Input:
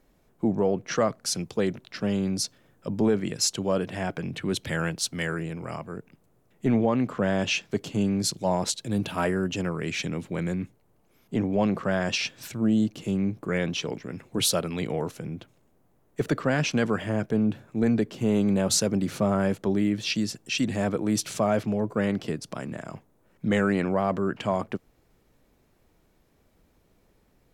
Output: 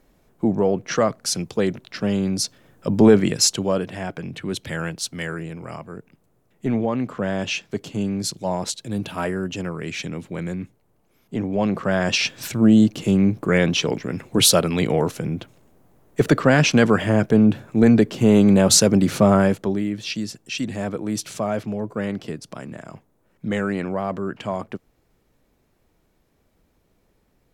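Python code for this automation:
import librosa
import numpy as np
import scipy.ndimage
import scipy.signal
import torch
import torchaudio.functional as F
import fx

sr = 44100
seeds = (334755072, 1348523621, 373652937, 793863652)

y = fx.gain(x, sr, db=fx.line((2.39, 4.5), (3.16, 11.0), (3.99, 0.5), (11.37, 0.5), (12.46, 9.0), (19.36, 9.0), (19.85, -0.5)))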